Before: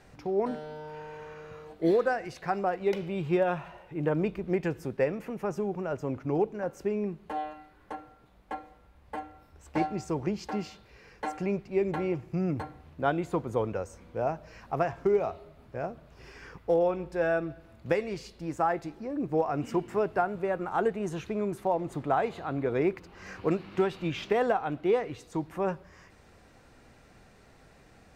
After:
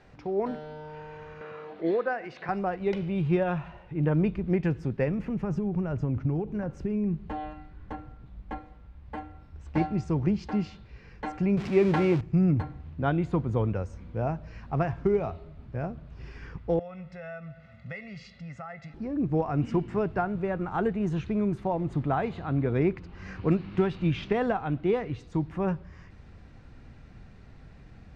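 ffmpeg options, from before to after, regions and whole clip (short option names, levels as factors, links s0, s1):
-filter_complex "[0:a]asettb=1/sr,asplit=3[s0][s1][s2];[s0]atrim=end=1.414[s3];[s1]atrim=start=1.41:end=2.49,asetpts=PTS-STARTPTS,afade=t=in:d=0.004:c=qsin,afade=t=out:st=1.076:d=0.004:c=qsin,aemphasis=mode=production:type=50fm,acompressor=mode=upward:threshold=0.0316:ratio=2.5:attack=3.2:release=140:knee=2.83:detection=peak,highpass=290,lowpass=2600[s4];[s2]atrim=start=2.486[s5];[s3][s4]acrossfade=d=0.004:c1=hsin:c2=qsin[s6];[s6][s5]acrossfade=d=0.004:c1=qsin:c2=hsin,asettb=1/sr,asplit=3[s7][s8][s9];[s7]atrim=end=5.084[s10];[s8]atrim=start=5.08:end=8.58,asetpts=PTS-STARTPTS,afade=t=in:d=0.004:c=qsin,afade=t=out:st=3.496:d=0.004:c=qsin,lowshelf=f=190:g=7.5,acompressor=threshold=0.0355:ratio=4:attack=3.2:release=140:knee=1:detection=peak[s11];[s9]atrim=start=8.576[s12];[s10][s11]acrossfade=d=0.004:c1=hsin:c2=qsin[s13];[s13][s12]acrossfade=d=0.004:c1=qsin:c2=hsin,asettb=1/sr,asplit=3[s14][s15][s16];[s14]atrim=end=11.574[s17];[s15]atrim=start=11.57:end=12.21,asetpts=PTS-STARTPTS,afade=t=in:d=0.004:c=qsin,afade=t=out:st=0.636:d=0.004:c=qsin,aeval=exprs='val(0)+0.5*0.0133*sgn(val(0))':c=same,highpass=f=320:p=1,acontrast=65[s18];[s16]atrim=start=12.206[s19];[s17][s18]acrossfade=d=0.004:c1=hsin:c2=qsin[s20];[s20][s19]acrossfade=d=0.004:c1=qsin:c2=hsin,asettb=1/sr,asplit=3[s21][s22][s23];[s21]atrim=end=16.794[s24];[s22]atrim=start=16.79:end=18.94,asetpts=PTS-STARTPTS,afade=t=in:d=0.004:c=qsin,afade=t=out:st=2.146:d=0.004:c=qsin,aecho=1:1:1.5:0.85,atrim=end_sample=94815,acompressor=threshold=0.00562:ratio=2:attack=3.2:release=140:knee=1:detection=peak,highpass=180,equalizer=f=320:t=q:w=4:g=-8,equalizer=f=450:t=q:w=4:g=-7,equalizer=f=840:t=q:w=4:g=-6,equalizer=f=2000:t=q:w=4:g=10,lowpass=f=7600:w=0.5412,lowpass=f=7600:w=1.3066[s25];[s23]atrim=start=18.936[s26];[s24][s25]acrossfade=d=0.004:c1=hsin:c2=qsin[s27];[s27][s26]acrossfade=d=0.004:c1=qsin:c2=hsin,lowpass=4400,asubboost=boost=3.5:cutoff=240"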